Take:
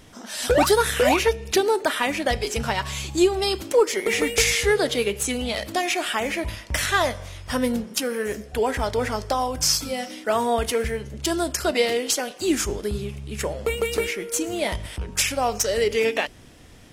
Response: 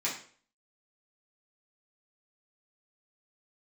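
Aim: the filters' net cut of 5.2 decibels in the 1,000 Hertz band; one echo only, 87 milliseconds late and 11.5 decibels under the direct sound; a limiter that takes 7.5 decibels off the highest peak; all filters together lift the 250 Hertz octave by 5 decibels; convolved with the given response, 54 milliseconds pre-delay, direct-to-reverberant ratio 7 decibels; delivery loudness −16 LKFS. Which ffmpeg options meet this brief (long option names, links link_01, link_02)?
-filter_complex "[0:a]equalizer=frequency=250:width_type=o:gain=7,equalizer=frequency=1000:width_type=o:gain=-8,alimiter=limit=-13dB:level=0:latency=1,aecho=1:1:87:0.266,asplit=2[link_01][link_02];[1:a]atrim=start_sample=2205,adelay=54[link_03];[link_02][link_03]afir=irnorm=-1:irlink=0,volume=-13.5dB[link_04];[link_01][link_04]amix=inputs=2:normalize=0,volume=7dB"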